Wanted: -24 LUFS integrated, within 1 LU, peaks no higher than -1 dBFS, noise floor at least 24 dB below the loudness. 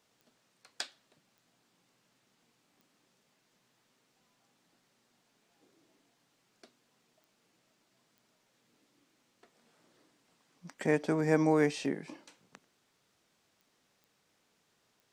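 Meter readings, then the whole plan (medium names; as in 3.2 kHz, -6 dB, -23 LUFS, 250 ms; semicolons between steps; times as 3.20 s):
clicks found 8; loudness -31.0 LUFS; peak level -14.5 dBFS; loudness target -24.0 LUFS
-> de-click; trim +7 dB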